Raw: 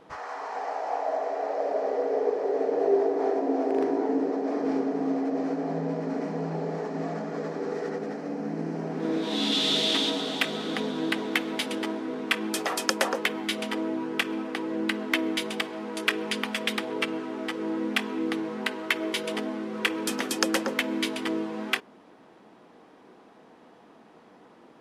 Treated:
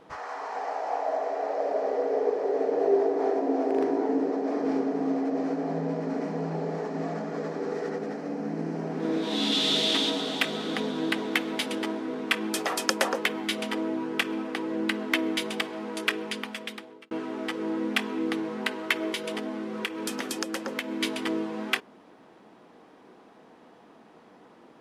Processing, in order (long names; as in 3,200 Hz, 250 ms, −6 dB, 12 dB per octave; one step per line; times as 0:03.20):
0:15.91–0:17.11: fade out
0:19.13–0:21.01: downward compressor 6 to 1, threshold −28 dBFS, peak gain reduction 10 dB